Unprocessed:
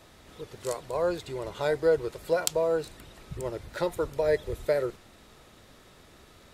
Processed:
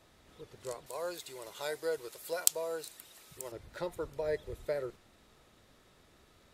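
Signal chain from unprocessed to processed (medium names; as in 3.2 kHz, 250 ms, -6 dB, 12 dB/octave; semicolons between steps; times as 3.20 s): 0.86–3.52 s: RIAA curve recording; trim -9 dB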